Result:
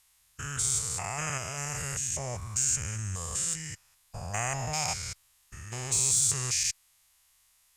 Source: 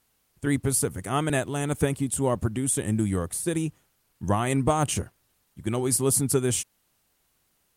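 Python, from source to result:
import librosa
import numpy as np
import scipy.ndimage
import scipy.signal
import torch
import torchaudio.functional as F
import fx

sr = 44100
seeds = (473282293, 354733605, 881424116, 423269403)

p1 = fx.spec_steps(x, sr, hold_ms=200)
p2 = fx.tone_stack(p1, sr, knobs='10-0-10')
p3 = fx.formant_shift(p2, sr, semitones=-4)
p4 = np.clip(10.0 ** (28.0 / 20.0) * p3, -1.0, 1.0) / 10.0 ** (28.0 / 20.0)
p5 = p3 + (p4 * librosa.db_to_amplitude(-3.0))
y = p5 * librosa.db_to_amplitude(2.5)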